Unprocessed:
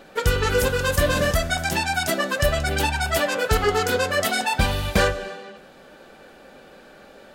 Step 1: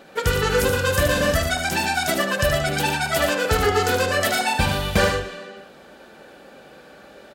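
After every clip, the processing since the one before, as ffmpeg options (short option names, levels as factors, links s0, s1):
-af "highpass=52,aecho=1:1:75.8|116.6:0.501|0.398"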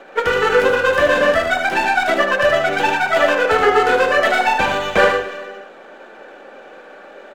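-filter_complex "[0:a]acrossover=split=290 4000:gain=0.0891 1 0.0631[s0][s1][s2];[s0][s1][s2]amix=inputs=3:normalize=0,acrossover=split=100|1600|2600[s3][s4][s5][s6];[s6]aeval=exprs='max(val(0),0)':c=same[s7];[s3][s4][s5][s7]amix=inputs=4:normalize=0,volume=2.37"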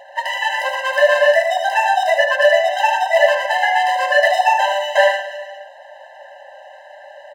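-af "afftfilt=real='re*eq(mod(floor(b*sr/1024/530),2),1)':imag='im*eq(mod(floor(b*sr/1024/530),2),1)':win_size=1024:overlap=0.75,volume=1.41"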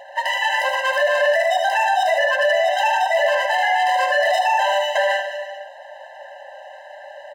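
-af "alimiter=limit=0.266:level=0:latency=1:release=15,volume=1.12"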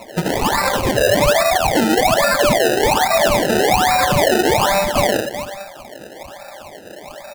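-af "acrusher=samples=27:mix=1:aa=0.000001:lfo=1:lforange=27:lforate=1.2,volume=1.41"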